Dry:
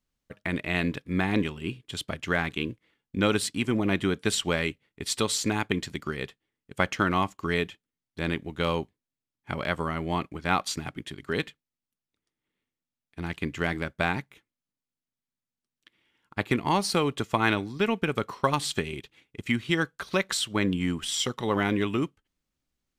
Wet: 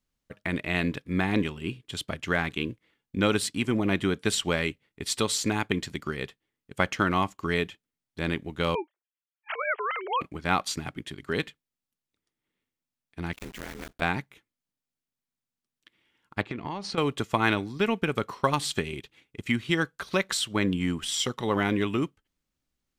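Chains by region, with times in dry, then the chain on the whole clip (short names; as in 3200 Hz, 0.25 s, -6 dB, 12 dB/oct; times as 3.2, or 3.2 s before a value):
8.75–10.21 sine-wave speech + tilt +2.5 dB/oct
13.33–14.02 block floating point 3-bit + compressor 3:1, threshold -34 dBFS + ring modulator 110 Hz
16.41–16.98 air absorption 130 m + compressor 10:1, threshold -29 dBFS
whole clip: dry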